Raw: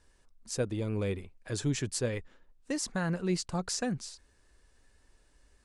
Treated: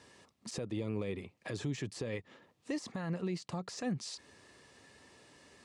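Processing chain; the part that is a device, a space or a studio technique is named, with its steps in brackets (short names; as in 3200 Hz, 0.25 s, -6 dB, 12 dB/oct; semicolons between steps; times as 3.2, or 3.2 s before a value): broadcast voice chain (HPF 110 Hz 24 dB/oct; de-esser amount 95%; compressor 3:1, threshold -47 dBFS, peak gain reduction 16 dB; bell 4800 Hz +4.5 dB 2.6 oct; limiter -38.5 dBFS, peak gain reduction 9.5 dB); high shelf 5000 Hz -11.5 dB; notch 1500 Hz, Q 6.1; gain +11.5 dB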